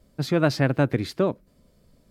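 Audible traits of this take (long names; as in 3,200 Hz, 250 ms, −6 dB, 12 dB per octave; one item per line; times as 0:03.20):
background noise floor −61 dBFS
spectral slope −6.0 dB per octave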